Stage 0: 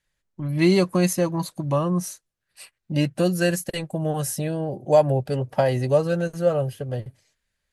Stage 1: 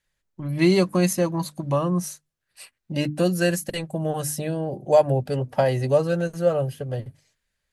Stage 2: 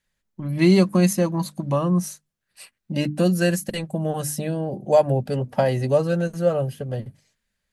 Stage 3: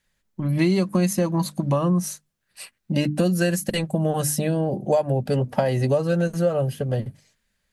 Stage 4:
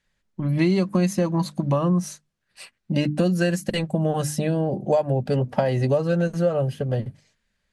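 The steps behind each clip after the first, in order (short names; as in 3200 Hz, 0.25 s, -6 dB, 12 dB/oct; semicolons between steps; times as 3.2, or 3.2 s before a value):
notches 50/100/150/200/250/300 Hz
bell 210 Hz +9.5 dB 0.36 oct
compressor 5:1, threshold -22 dBFS, peak gain reduction 10.5 dB; gain +4.5 dB
air absorption 52 m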